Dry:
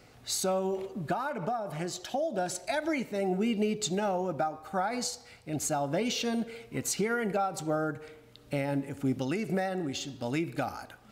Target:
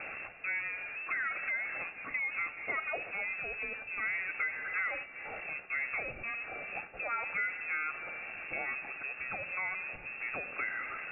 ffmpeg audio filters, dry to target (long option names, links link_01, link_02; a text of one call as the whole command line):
ffmpeg -i in.wav -filter_complex "[0:a]aeval=exprs='val(0)+0.5*0.0211*sgn(val(0))':channel_layout=same,acrossover=split=120|750[link_01][link_02][link_03];[link_01]acompressor=threshold=-53dB:ratio=4[link_04];[link_02]acompressor=threshold=-44dB:ratio=4[link_05];[link_03]acompressor=threshold=-31dB:ratio=4[link_06];[link_04][link_05][link_06]amix=inputs=3:normalize=0,lowpass=frequency=2400:width_type=q:width=0.5098,lowpass=frequency=2400:width_type=q:width=0.6013,lowpass=frequency=2400:width_type=q:width=0.9,lowpass=frequency=2400:width_type=q:width=2.563,afreqshift=-2800,equalizer=frequency=980:width=7.7:gain=-13" out.wav